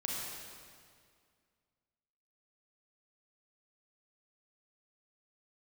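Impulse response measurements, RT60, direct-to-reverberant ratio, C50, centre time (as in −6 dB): 2.1 s, −3.5 dB, −2.0 dB, 128 ms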